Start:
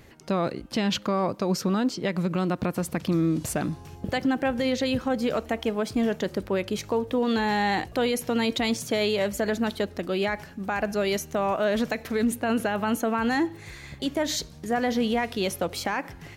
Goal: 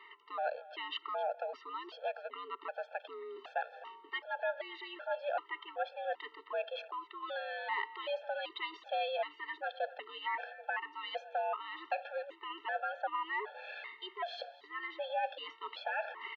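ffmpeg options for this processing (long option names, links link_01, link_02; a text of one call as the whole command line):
ffmpeg -i in.wav -af "bandreject=frequency=2200:width=7,areverse,acompressor=threshold=-36dB:ratio=5,areverse,aecho=1:1:259:0.119,highpass=frequency=490:width_type=q:width=0.5412,highpass=frequency=490:width_type=q:width=1.307,lowpass=frequency=3200:width_type=q:width=0.5176,lowpass=frequency=3200:width_type=q:width=0.7071,lowpass=frequency=3200:width_type=q:width=1.932,afreqshift=92,afftfilt=real='re*gt(sin(2*PI*1.3*pts/sr)*(1-2*mod(floor(b*sr/1024/450),2)),0)':imag='im*gt(sin(2*PI*1.3*pts/sr)*(1-2*mod(floor(b*sr/1024/450),2)),0)':win_size=1024:overlap=0.75,volume=7dB" out.wav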